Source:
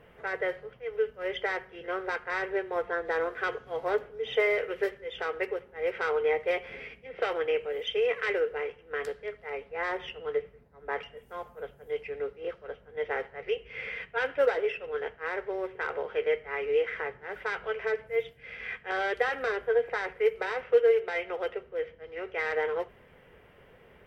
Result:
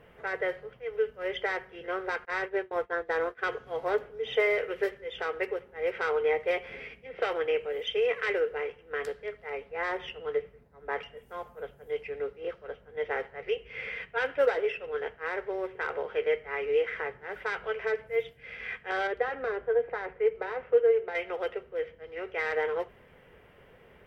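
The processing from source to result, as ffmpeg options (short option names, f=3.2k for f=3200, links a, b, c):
-filter_complex "[0:a]asettb=1/sr,asplit=3[a][b][c];[a]atrim=end=2.254[d];[b]atrim=start=2.25:end=3.43,asetpts=PTS-STARTPTS,afade=t=in:d=0.004:c=qsin,afade=t=out:st=1.176:d=0.004:c=qsin,agate=range=-33dB:threshold=-32dB:ratio=3:release=100:detection=peak[e];[c]atrim=start=3.426[f];[d][e]acrossfade=d=0.004:c1=hsin:c2=qsin[g];[g][f]acrossfade=d=0.004:c1=qsin:c2=hsin,asettb=1/sr,asplit=3[h][i][j];[h]atrim=end=19.074[k];[i]atrim=start=19.07:end=21.15,asetpts=PTS-STARTPTS,afade=t=in:d=0.004:c=qsin,afade=t=out:st=2.076:d=0.004:c=qsin,lowpass=f=1.1k:p=1[l];[j]atrim=start=21.146[m];[k][l]acrossfade=d=0.004:c1=hsin:c2=qsin[n];[n][m]acrossfade=d=0.004:c1=qsin:c2=hsin"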